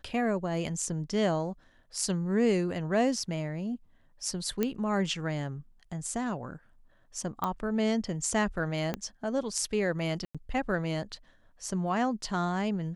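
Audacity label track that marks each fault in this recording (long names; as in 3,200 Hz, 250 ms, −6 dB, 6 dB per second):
4.630000	4.630000	click −14 dBFS
7.440000	7.440000	click −17 dBFS
8.940000	8.940000	click −17 dBFS
10.250000	10.350000	drop-out 96 ms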